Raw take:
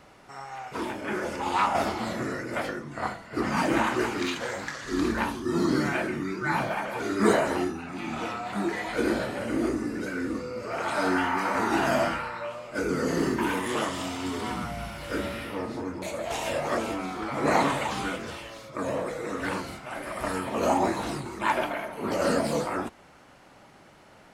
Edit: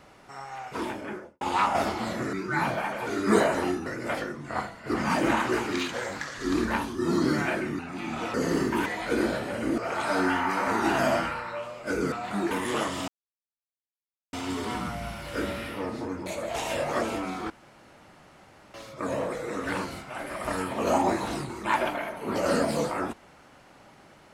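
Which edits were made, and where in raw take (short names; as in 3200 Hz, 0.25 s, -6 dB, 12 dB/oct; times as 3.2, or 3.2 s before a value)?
0.88–1.41 studio fade out
6.26–7.79 move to 2.33
8.34–8.73 swap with 13–13.52
9.65–10.66 cut
14.09 insert silence 1.25 s
17.26–18.5 room tone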